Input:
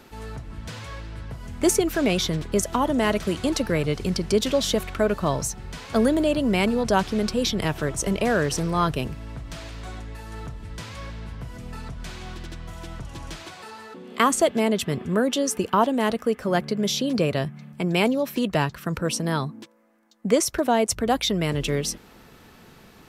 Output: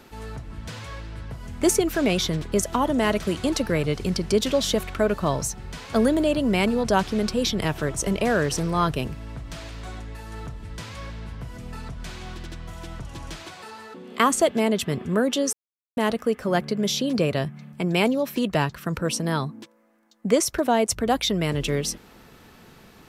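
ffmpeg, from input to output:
ffmpeg -i in.wav -filter_complex "[0:a]asplit=3[link_01][link_02][link_03];[link_01]atrim=end=15.53,asetpts=PTS-STARTPTS,afade=type=out:start_time=15.526:duration=0.004:curve=hsin[link_04];[link_02]atrim=start=15.53:end=15.97,asetpts=PTS-STARTPTS,volume=0[link_05];[link_03]atrim=start=15.97,asetpts=PTS-STARTPTS,afade=type=in:duration=0.004:curve=hsin[link_06];[link_04][link_05][link_06]concat=n=3:v=0:a=1" out.wav

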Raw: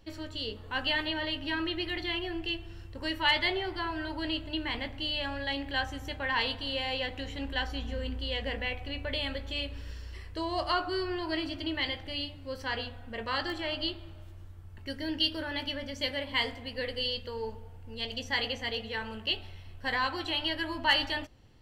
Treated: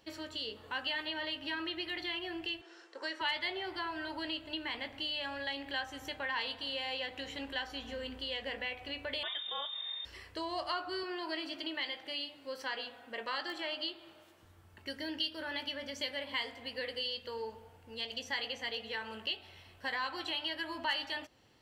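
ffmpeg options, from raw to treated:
ffmpeg -i in.wav -filter_complex "[0:a]asettb=1/sr,asplit=3[link_01][link_02][link_03];[link_01]atrim=end=2.614[link_04];[link_02]atrim=start=2.61:end=3.21,asetpts=PTS-STARTPTS,afade=type=in:duration=0.004:curve=qsin,afade=type=out:start_time=0.596:duration=0.004:curve=qsin,highpass=frequency=360:width=0.5412,highpass=frequency=360:width=1.3066,equalizer=frequency=390:width_type=q:width=4:gain=4,equalizer=frequency=1500:width_type=q:width=4:gain=5,equalizer=frequency=2800:width_type=q:width=4:gain=-7,equalizer=frequency=6100:width_type=q:width=4:gain=3,lowpass=frequency=8000:width=0.5412,lowpass=frequency=8000:width=1.3066[link_05];[link_03]atrim=start=3.206[link_06];[link_04][link_05]acrossfade=duration=0.004:curve1=hsin:curve2=qsin[link_07];[link_07][link_06]acrossfade=duration=0.004:curve1=qsin:curve2=hsin,asettb=1/sr,asplit=3[link_08][link_09][link_10];[link_08]atrim=end=9.234[link_11];[link_09]atrim=start=9.23:end=10.05,asetpts=PTS-STARTPTS,afade=type=in:duration=0.004:curve=qsin,afade=type=out:start_time=0.816:duration=0.004:curve=qsin,lowpass=frequency=3100:width_type=q:width=0.5098,lowpass=frequency=3100:width_type=q:width=0.6013,lowpass=frequency=3100:width_type=q:width=0.9,lowpass=frequency=3100:width_type=q:width=2.563,afreqshift=-3700[link_12];[link_10]atrim=start=10.046[link_13];[link_11][link_12]acrossfade=duration=0.004:curve1=hsin:curve2=qsin[link_14];[link_14][link_13]acrossfade=duration=0.004:curve1=qsin:curve2=hsin,asettb=1/sr,asplit=3[link_15][link_16][link_17];[link_15]atrim=end=11.034[link_18];[link_16]atrim=start=11.03:end=14.43,asetpts=PTS-STARTPTS,afade=type=in:duration=0.004:curve=qsin,afade=type=out:start_time=3.396:duration=0.004:curve=qsin,highpass=220[link_19];[link_17]atrim=start=14.426[link_20];[link_18][link_19]acrossfade=duration=0.004:curve1=hsin:curve2=qsin[link_21];[link_21][link_20]acrossfade=duration=0.004:curve1=qsin:curve2=hsin,highpass=frequency=440:poles=1,acompressor=threshold=-39dB:ratio=2,volume=1dB" out.wav

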